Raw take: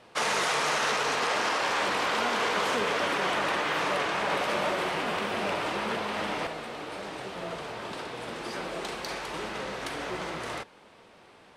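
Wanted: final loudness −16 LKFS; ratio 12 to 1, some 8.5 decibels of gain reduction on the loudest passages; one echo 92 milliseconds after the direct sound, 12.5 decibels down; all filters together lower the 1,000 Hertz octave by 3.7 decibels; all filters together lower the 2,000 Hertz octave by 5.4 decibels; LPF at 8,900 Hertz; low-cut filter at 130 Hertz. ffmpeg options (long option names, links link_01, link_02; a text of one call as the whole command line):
ffmpeg -i in.wav -af "highpass=130,lowpass=8900,equalizer=frequency=1000:width_type=o:gain=-3,equalizer=frequency=2000:width_type=o:gain=-6,acompressor=threshold=-35dB:ratio=12,aecho=1:1:92:0.237,volume=22.5dB" out.wav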